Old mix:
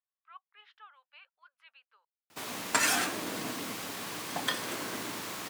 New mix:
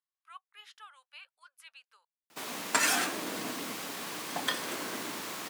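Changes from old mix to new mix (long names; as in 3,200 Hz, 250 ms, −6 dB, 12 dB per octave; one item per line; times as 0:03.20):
speech: remove high-frequency loss of the air 340 metres
master: add high-pass filter 160 Hz 12 dB per octave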